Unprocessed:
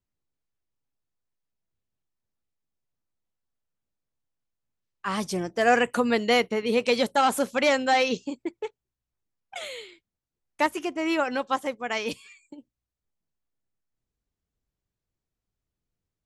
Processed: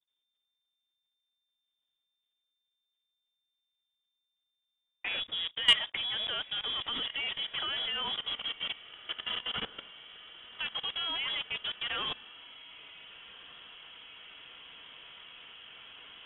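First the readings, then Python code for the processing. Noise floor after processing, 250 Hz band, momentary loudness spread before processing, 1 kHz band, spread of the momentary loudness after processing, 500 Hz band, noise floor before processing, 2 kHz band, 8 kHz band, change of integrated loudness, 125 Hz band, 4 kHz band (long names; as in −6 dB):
−85 dBFS, −24.5 dB, 15 LU, −16.5 dB, 17 LU, −24.0 dB, below −85 dBFS, −7.5 dB, below −15 dB, −7.0 dB, −13.0 dB, +5.5 dB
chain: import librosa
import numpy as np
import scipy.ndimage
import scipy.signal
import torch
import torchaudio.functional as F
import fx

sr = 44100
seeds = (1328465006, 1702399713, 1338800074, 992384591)

y = fx.block_float(x, sr, bits=3)
y = fx.echo_diffused(y, sr, ms=1486, feedback_pct=64, wet_db=-12.5)
y = fx.freq_invert(y, sr, carrier_hz=3600)
y = fx.level_steps(y, sr, step_db=17)
y = 10.0 ** (-10.0 / 20.0) * np.tanh(y / 10.0 ** (-10.0 / 20.0))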